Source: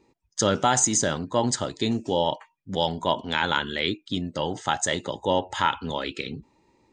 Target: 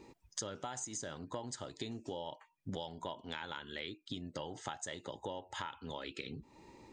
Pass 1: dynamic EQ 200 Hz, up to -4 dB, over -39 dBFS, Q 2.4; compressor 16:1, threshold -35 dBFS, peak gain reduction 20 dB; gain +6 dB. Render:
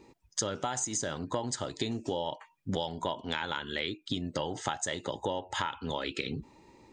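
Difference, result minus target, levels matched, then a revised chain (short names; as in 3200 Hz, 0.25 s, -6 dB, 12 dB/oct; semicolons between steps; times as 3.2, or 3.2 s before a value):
compressor: peak gain reduction -9.5 dB
dynamic EQ 200 Hz, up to -4 dB, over -39 dBFS, Q 2.4; compressor 16:1, threshold -45 dBFS, peak gain reduction 29 dB; gain +6 dB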